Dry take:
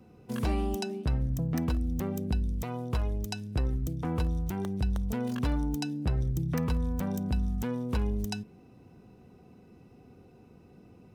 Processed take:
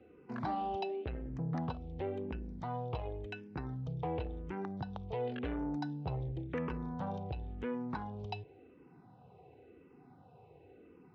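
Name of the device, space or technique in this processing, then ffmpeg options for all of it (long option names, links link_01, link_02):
barber-pole phaser into a guitar amplifier: -filter_complex "[0:a]asplit=2[link_01][link_02];[link_02]afreqshift=-0.93[link_03];[link_01][link_03]amix=inputs=2:normalize=1,asoftclip=type=tanh:threshold=-27dB,highpass=100,equalizer=frequency=210:width_type=q:width=4:gain=-10,equalizer=frequency=460:width_type=q:width=4:gain=4,equalizer=frequency=820:width_type=q:width=4:gain=7,lowpass=frequency=3500:width=0.5412,lowpass=frequency=3500:width=1.3066"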